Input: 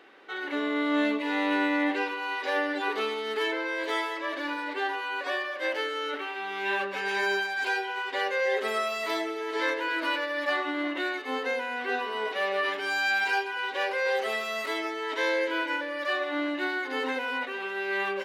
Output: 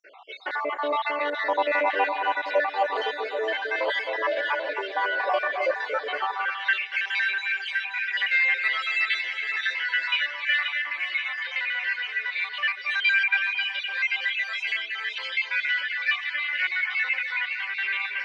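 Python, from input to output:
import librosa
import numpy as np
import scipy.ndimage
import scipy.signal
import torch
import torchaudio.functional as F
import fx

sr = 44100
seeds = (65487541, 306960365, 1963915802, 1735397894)

p1 = fx.spec_dropout(x, sr, seeds[0], share_pct=66)
p2 = 10.0 ** (-35.0 / 20.0) * np.tanh(p1 / 10.0 ** (-35.0 / 20.0))
p3 = p1 + F.gain(torch.from_numpy(p2), -9.0).numpy()
p4 = fx.bandpass_edges(p3, sr, low_hz=290.0, high_hz=3800.0)
p5 = fx.echo_alternate(p4, sr, ms=264, hz=2000.0, feedback_pct=79, wet_db=-6)
p6 = fx.filter_sweep_highpass(p5, sr, from_hz=650.0, to_hz=2200.0, start_s=6.07, end_s=6.83, q=2.5)
y = F.gain(torch.from_numpy(p6), 4.5).numpy()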